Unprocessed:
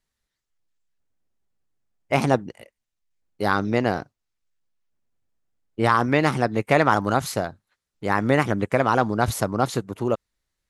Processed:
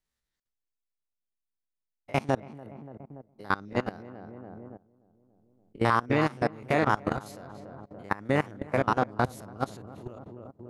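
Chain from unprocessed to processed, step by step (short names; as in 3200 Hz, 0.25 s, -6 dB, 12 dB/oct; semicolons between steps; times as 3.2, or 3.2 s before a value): stepped spectrum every 50 ms; darkening echo 0.287 s, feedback 52%, low-pass 1100 Hz, level -6 dB; level quantiser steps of 21 dB; gain -2 dB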